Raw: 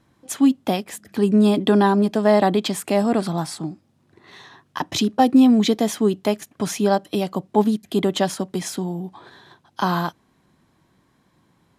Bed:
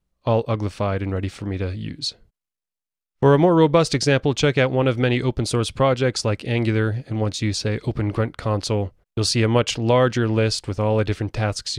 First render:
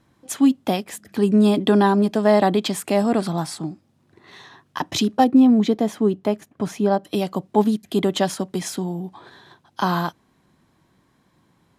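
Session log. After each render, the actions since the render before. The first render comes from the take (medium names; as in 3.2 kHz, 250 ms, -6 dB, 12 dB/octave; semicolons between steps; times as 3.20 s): 5.24–7.04 s: treble shelf 2.1 kHz -11.5 dB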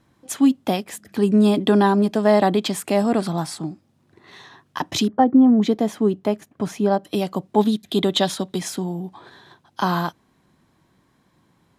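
5.08–5.62 s: Savitzky-Golay filter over 41 samples; 7.59–8.58 s: peaking EQ 3.7 kHz +12.5 dB 0.31 oct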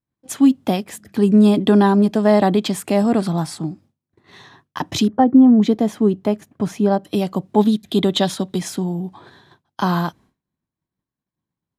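expander -44 dBFS; bass shelf 220 Hz +7.5 dB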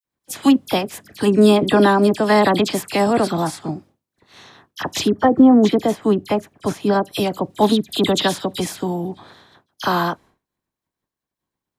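spectral peaks clipped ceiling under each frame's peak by 13 dB; phase dispersion lows, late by 49 ms, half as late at 2.5 kHz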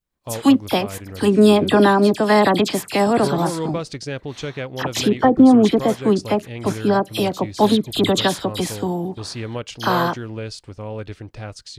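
add bed -10.5 dB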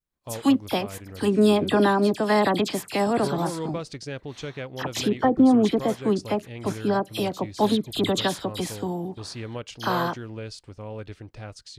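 trim -6 dB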